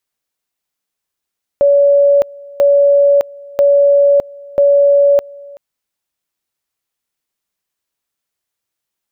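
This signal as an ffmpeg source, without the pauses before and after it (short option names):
-f lavfi -i "aevalsrc='pow(10,(-6-24.5*gte(mod(t,0.99),0.61))/20)*sin(2*PI*567*t)':d=3.96:s=44100"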